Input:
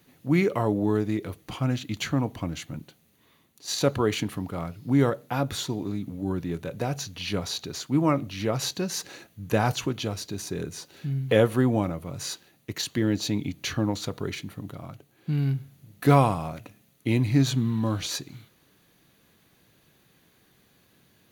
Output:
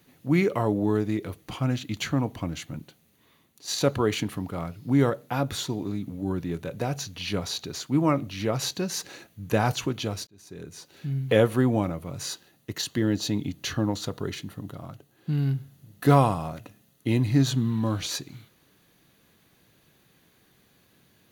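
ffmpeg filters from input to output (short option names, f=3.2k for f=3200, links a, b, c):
-filter_complex "[0:a]asettb=1/sr,asplit=3[a][b][c];[a]atrim=end=12.254[d];[b]atrim=start=12.25:end=17.71,asetpts=PTS-STARTPTS,afade=t=in:d=0.004:c=qsin,afade=t=out:st=5.456:d=0.004:c=qsin,bandreject=f=2.3k:w=7.7[e];[c]atrim=start=17.706[f];[d][e]acrossfade=d=0.004:c1=hsin:c2=qsin[g];[g][f]acrossfade=d=0.004:c1=qsin:c2=hsin,asplit=2[h][i];[h]atrim=end=10.27,asetpts=PTS-STARTPTS,afade=t=out:st=10.266:d=0.004:c=hsin[j];[i]atrim=start=10.27,asetpts=PTS-STARTPTS,afade=t=in:d=0.89[k];[j][k]concat=n=2:v=0:a=1"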